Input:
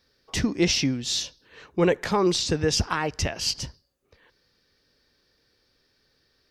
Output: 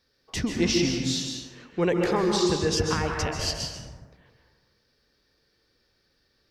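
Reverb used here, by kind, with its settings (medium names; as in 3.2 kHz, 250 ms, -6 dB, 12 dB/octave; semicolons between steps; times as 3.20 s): plate-style reverb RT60 1.4 s, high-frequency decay 0.4×, pre-delay 120 ms, DRR 1.5 dB; trim -3.5 dB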